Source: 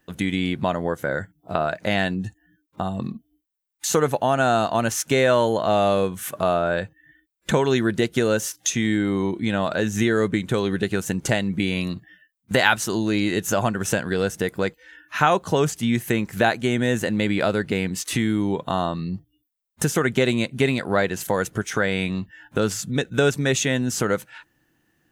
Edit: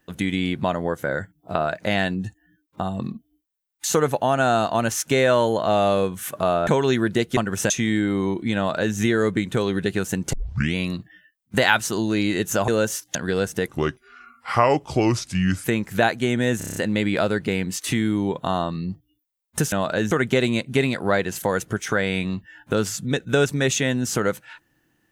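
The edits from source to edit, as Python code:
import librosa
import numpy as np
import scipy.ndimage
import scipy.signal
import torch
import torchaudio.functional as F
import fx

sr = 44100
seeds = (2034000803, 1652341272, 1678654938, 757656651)

y = fx.edit(x, sr, fx.cut(start_s=6.67, length_s=0.83),
    fx.swap(start_s=8.2, length_s=0.47, other_s=13.65, other_length_s=0.33),
    fx.duplicate(start_s=9.54, length_s=0.39, to_s=19.96),
    fx.tape_start(start_s=11.3, length_s=0.42),
    fx.speed_span(start_s=14.51, length_s=1.55, speed=0.79),
    fx.stutter(start_s=17.0, slice_s=0.03, count=7), tone=tone)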